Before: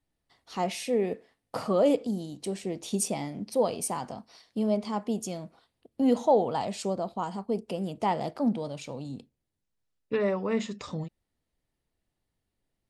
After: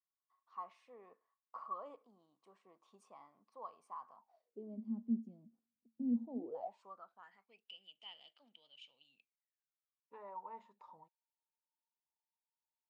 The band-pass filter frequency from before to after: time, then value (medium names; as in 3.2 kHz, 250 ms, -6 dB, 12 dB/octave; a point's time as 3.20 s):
band-pass filter, Q 19
4.16 s 1.1 kHz
4.80 s 230 Hz
6.35 s 230 Hz
6.72 s 900 Hz
7.69 s 3 kHz
9.05 s 3 kHz
10.14 s 920 Hz